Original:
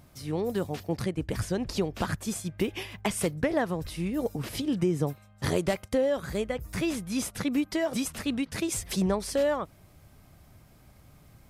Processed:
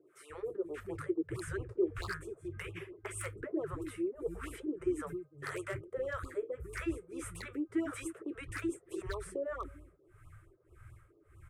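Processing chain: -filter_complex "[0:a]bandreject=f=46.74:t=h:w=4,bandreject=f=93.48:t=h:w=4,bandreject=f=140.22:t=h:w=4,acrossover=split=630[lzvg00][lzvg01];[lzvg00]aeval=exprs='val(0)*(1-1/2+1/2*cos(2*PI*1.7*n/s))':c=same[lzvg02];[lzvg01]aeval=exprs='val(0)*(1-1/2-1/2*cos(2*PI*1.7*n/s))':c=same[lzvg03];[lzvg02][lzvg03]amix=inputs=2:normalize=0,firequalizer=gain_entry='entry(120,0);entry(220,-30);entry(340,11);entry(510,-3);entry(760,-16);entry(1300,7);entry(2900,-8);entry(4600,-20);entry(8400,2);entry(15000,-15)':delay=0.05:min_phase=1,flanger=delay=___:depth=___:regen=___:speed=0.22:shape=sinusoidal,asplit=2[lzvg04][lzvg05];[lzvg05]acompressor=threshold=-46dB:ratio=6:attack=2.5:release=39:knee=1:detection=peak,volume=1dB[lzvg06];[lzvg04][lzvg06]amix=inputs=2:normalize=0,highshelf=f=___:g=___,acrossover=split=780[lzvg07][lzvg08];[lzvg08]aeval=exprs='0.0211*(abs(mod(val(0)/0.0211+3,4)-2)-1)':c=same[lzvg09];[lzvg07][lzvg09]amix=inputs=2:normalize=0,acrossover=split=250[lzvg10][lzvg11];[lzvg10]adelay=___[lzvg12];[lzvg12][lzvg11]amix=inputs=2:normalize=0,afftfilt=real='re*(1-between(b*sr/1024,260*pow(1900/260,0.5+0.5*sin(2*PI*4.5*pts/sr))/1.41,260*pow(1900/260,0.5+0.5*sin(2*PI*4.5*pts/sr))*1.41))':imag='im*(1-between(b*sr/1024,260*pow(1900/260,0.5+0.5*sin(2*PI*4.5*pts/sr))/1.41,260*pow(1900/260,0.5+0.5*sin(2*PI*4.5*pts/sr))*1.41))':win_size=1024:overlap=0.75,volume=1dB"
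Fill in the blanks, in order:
4.4, 7.9, -58, 3600, -9, 300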